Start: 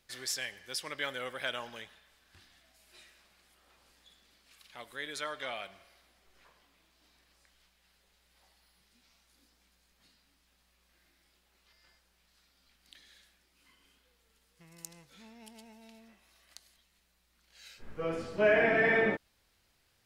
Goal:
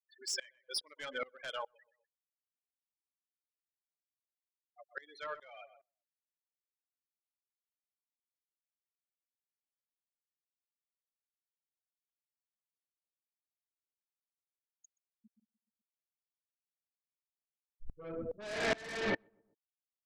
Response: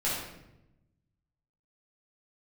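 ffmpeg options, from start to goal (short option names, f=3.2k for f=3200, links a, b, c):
-filter_complex "[0:a]afftfilt=real='re*gte(hypot(re,im),0.0251)':imag='im*gte(hypot(re,im),0.0251)':win_size=1024:overlap=0.75,asplit=2[a][b];[b]aeval=exprs='0.188*sin(PI/2*5.62*val(0)/0.188)':c=same,volume=-12dB[c];[a][c]amix=inputs=2:normalize=0,asplit=2[d][e];[e]adelay=125,lowpass=f=1.1k:p=1,volume=-16.5dB,asplit=2[f][g];[g]adelay=125,lowpass=f=1.1k:p=1,volume=0.27,asplit=2[h][i];[i]adelay=125,lowpass=f=1.1k:p=1,volume=0.27[j];[d][f][h][j]amix=inputs=4:normalize=0,aeval=exprs='val(0)*pow(10,-26*if(lt(mod(-2.4*n/s,1),2*abs(-2.4)/1000),1-mod(-2.4*n/s,1)/(2*abs(-2.4)/1000),(mod(-2.4*n/s,1)-2*abs(-2.4)/1000)/(1-2*abs(-2.4)/1000))/20)':c=same,volume=-4dB"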